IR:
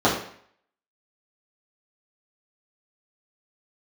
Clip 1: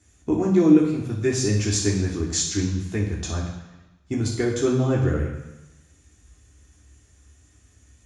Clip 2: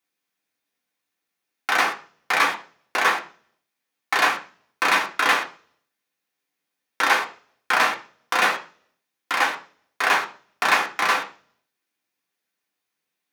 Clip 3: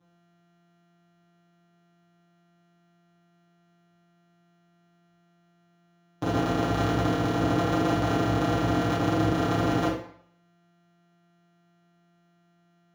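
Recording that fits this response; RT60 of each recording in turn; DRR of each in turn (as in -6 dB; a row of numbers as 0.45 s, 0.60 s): 3; 1.0 s, 0.40 s, 0.60 s; -3.5 dB, 0.5 dB, -8.5 dB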